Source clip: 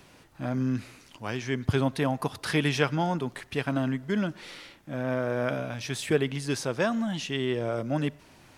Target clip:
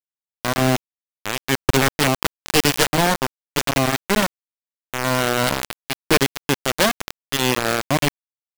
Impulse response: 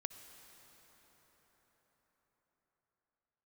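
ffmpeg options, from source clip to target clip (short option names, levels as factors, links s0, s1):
-af "highpass=f=41:p=1,equalizer=f=10000:w=0.99:g=-8.5,aecho=1:1:252:0.0631,aeval=exprs='(mod(5.96*val(0)+1,2)-1)/5.96':c=same,acrusher=bits=3:mix=0:aa=0.000001,volume=2.37"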